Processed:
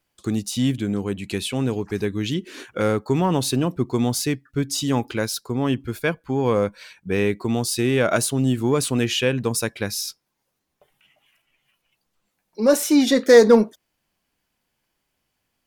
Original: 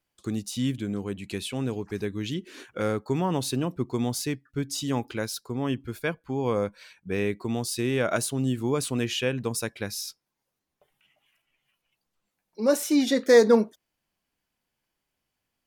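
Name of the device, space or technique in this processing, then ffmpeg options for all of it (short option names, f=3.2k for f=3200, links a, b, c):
parallel distortion: -filter_complex "[0:a]asplit=2[a][b];[b]asoftclip=type=hard:threshold=-23.5dB,volume=-12dB[c];[a][c]amix=inputs=2:normalize=0,volume=4.5dB"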